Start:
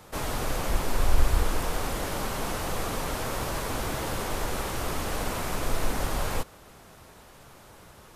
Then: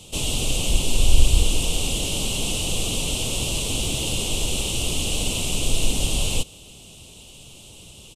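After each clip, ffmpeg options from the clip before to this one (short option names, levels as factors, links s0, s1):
-af "firequalizer=gain_entry='entry(140,0);entry(1700,-26);entry(2800,11);entry(4700,1);entry(8100,9);entry(13000,-6)':delay=0.05:min_phase=1,volume=2.11"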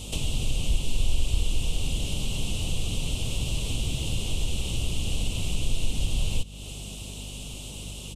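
-filter_complex "[0:a]acrossover=split=180|1600|4800[s0][s1][s2][s3];[s0]acompressor=threshold=0.141:ratio=4[s4];[s1]acompressor=threshold=0.00631:ratio=4[s5];[s2]acompressor=threshold=0.0112:ratio=4[s6];[s3]acompressor=threshold=0.00631:ratio=4[s7];[s4][s5][s6][s7]amix=inputs=4:normalize=0,aeval=exprs='val(0)+0.00708*(sin(2*PI*50*n/s)+sin(2*PI*2*50*n/s)/2+sin(2*PI*3*50*n/s)/3+sin(2*PI*4*50*n/s)/4+sin(2*PI*5*50*n/s)/5)':c=same,asplit=2[s8][s9];[s9]acompressor=threshold=0.0251:ratio=6,volume=1.26[s10];[s8][s10]amix=inputs=2:normalize=0,volume=0.708"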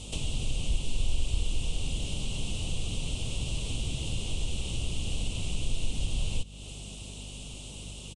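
-af "aresample=22050,aresample=44100,volume=0.631"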